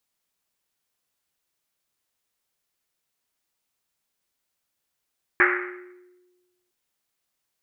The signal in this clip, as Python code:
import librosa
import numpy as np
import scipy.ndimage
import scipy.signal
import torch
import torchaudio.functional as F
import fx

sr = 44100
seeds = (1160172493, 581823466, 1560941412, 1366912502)

y = fx.risset_drum(sr, seeds[0], length_s=1.31, hz=360.0, decay_s=1.39, noise_hz=1700.0, noise_width_hz=990.0, noise_pct=65)